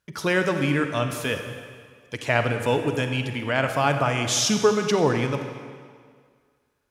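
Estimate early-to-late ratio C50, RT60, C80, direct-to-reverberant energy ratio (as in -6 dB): 6.5 dB, 1.9 s, 7.5 dB, 6.0 dB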